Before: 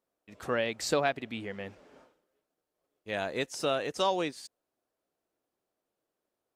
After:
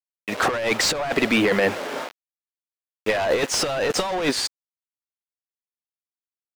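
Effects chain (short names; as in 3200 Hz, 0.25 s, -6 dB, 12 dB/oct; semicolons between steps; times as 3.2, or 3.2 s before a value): bit-crush 10-bit; overdrive pedal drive 31 dB, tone 2300 Hz, clips at -13 dBFS; negative-ratio compressor -24 dBFS, ratio -0.5; gain +4 dB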